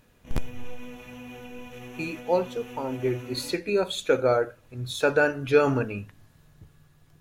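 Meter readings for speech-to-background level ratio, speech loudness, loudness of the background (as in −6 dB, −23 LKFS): 16.5 dB, −26.5 LKFS, −43.0 LKFS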